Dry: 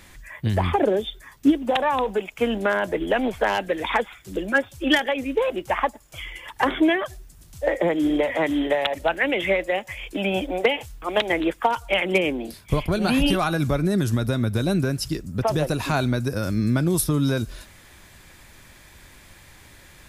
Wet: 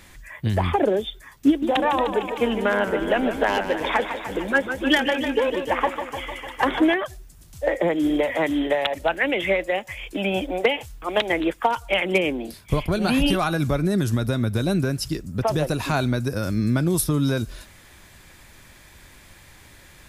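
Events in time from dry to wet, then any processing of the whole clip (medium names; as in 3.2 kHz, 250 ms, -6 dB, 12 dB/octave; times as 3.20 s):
1.47–6.94 s: modulated delay 151 ms, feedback 71%, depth 122 cents, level -9 dB
8.04–8.49 s: treble shelf 8.3 kHz +5 dB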